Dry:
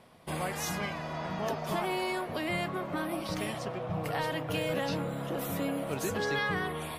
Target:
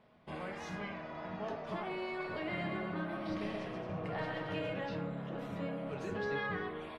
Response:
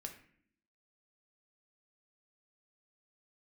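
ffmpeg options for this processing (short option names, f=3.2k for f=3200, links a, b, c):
-filter_complex "[0:a]lowpass=3.3k,asplit=3[a][b][c];[a]afade=t=out:st=2.18:d=0.02[d];[b]aecho=1:1:130|221|284.7|329.3|360.5:0.631|0.398|0.251|0.158|0.1,afade=t=in:st=2.18:d=0.02,afade=t=out:st=4.69:d=0.02[e];[c]afade=t=in:st=4.69:d=0.02[f];[d][e][f]amix=inputs=3:normalize=0[g];[1:a]atrim=start_sample=2205[h];[g][h]afir=irnorm=-1:irlink=0,volume=-3.5dB"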